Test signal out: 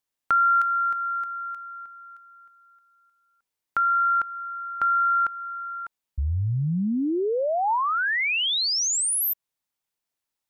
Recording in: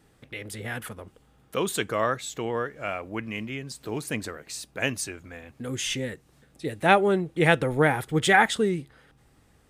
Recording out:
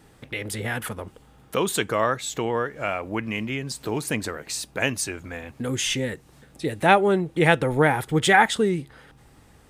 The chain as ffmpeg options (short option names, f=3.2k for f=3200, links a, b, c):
-filter_complex "[0:a]equalizer=f=900:t=o:w=0.28:g=3.5,asplit=2[a][b];[b]acompressor=threshold=-33dB:ratio=6,volume=2dB[c];[a][c]amix=inputs=2:normalize=0"